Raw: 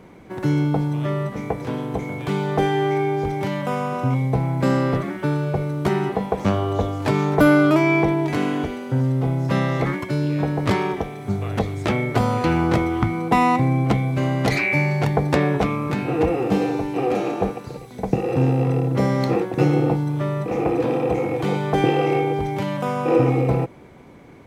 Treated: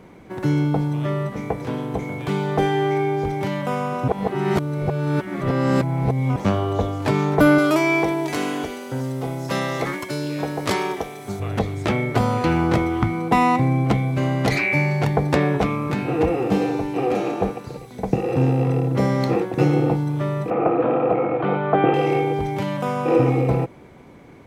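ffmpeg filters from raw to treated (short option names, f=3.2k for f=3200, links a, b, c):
-filter_complex "[0:a]asettb=1/sr,asplit=3[a][b][c];[a]atrim=end=7.584[d];[b]atrim=start=7.58:end=11.4,asetpts=PTS-STARTPTS,afade=t=in:d=0.004:c=qsin,afade=t=out:st=3.816:d=0.004:c=qsin,bass=f=250:g=-9,treble=f=4k:g=9[e];[c]atrim=start=11.396[f];[d][e]acrossfade=d=0.004:c1=hsin:c2=qsin[g];[g][f]acrossfade=d=0.004:c1=qsin:c2=hsin,asettb=1/sr,asplit=3[h][i][j];[h]atrim=end=20.504[k];[i]atrim=start=20.5:end=21.94,asetpts=PTS-STARTPTS,afade=t=in:d=0.004:c=qsin,afade=t=out:st=1.436:d=0.004:c=qsin,highpass=140,equalizer=f=650:t=q:w=4:g=9,equalizer=f=1.3k:t=q:w=4:g=10,equalizer=f=2k:t=q:w=4:g=-3,lowpass=f=2.7k:w=0.5412,lowpass=f=2.7k:w=1.3066[l];[j]atrim=start=21.936[m];[k][l]acrossfade=d=0.004:c1=hsin:c2=qsin[n];[n][m]acrossfade=d=0.004:c1=qsin:c2=hsin,asplit=3[o][p][q];[o]atrim=end=4.082[r];[p]atrim=start=4.078:end=6.362,asetpts=PTS-STARTPTS,areverse[s];[q]atrim=start=6.358[t];[r][s]acrossfade=d=0.004:c1=hsin:c2=hsin[u];[u][t]acrossfade=d=0.004:c1=hsin:c2=hsin"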